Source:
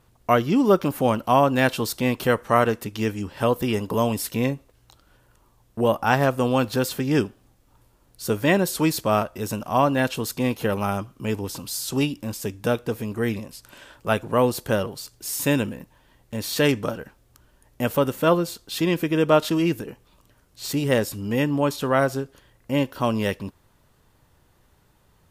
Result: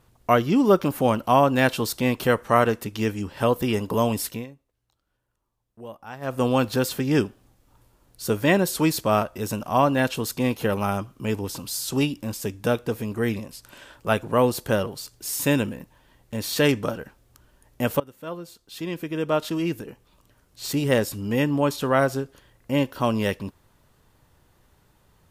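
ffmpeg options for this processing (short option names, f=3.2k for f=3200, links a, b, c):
-filter_complex "[0:a]asplit=4[a][b][c][d];[a]atrim=end=4.46,asetpts=PTS-STARTPTS,afade=t=out:st=4.25:d=0.21:silence=0.112202[e];[b]atrim=start=4.46:end=6.21,asetpts=PTS-STARTPTS,volume=-19dB[f];[c]atrim=start=6.21:end=18,asetpts=PTS-STARTPTS,afade=t=in:d=0.21:silence=0.112202,afade=t=out:st=11.786:d=0.004:c=hsin:silence=0.0668344[g];[d]atrim=start=18,asetpts=PTS-STARTPTS,afade=t=in:d=2.75:silence=0.0668344[h];[e][f][g][h]concat=n=4:v=0:a=1"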